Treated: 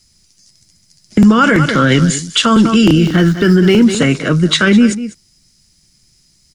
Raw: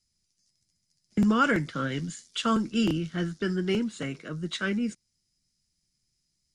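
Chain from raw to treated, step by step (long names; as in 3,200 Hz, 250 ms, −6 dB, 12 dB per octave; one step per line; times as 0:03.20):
0:02.97–0:03.84: running median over 5 samples
single-tap delay 198 ms −16 dB
boost into a limiter +24 dB
level −1 dB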